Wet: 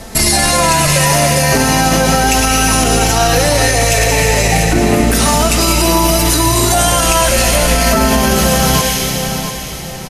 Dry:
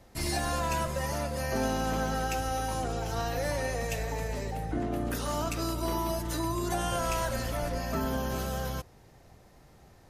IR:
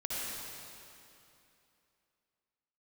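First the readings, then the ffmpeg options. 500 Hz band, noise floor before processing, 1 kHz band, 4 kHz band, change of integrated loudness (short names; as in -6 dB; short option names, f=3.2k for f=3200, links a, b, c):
+18.5 dB, -57 dBFS, +19.0 dB, +25.0 dB, +20.5 dB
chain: -filter_complex "[0:a]flanger=delay=4.5:depth=2.8:regen=38:speed=0.38:shape=sinusoidal,lowpass=f=12k:w=0.5412,lowpass=f=12k:w=1.3066,asplit=2[a][b];[b]highshelf=f=1.7k:t=q:w=3:g=8[c];[1:a]atrim=start_sample=2205,adelay=108[d];[c][d]afir=irnorm=-1:irlink=0,volume=-15dB[e];[a][e]amix=inputs=2:normalize=0,acompressor=threshold=-36dB:ratio=6,aemphasis=mode=production:type=cd,aecho=1:1:689|1378|2067:0.282|0.0874|0.0271,alimiter=level_in=30.5dB:limit=-1dB:release=50:level=0:latency=1,volume=-1dB"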